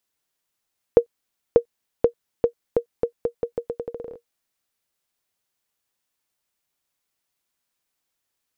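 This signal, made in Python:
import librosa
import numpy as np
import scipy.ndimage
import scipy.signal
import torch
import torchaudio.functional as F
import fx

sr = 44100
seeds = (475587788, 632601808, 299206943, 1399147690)

y = fx.bouncing_ball(sr, first_gap_s=0.59, ratio=0.82, hz=472.0, decay_ms=93.0, level_db=-2.0)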